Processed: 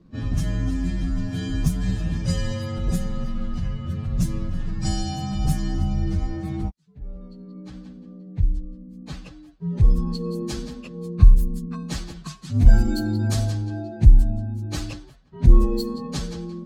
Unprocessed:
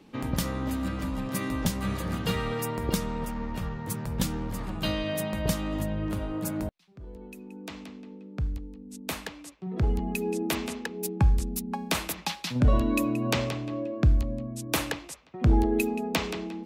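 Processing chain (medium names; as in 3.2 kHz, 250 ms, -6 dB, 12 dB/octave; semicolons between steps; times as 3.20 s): frequency axis rescaled in octaves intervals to 123%; level-controlled noise filter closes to 2.4 kHz, open at -22.5 dBFS; tone controls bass +15 dB, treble +11 dB; trim -3 dB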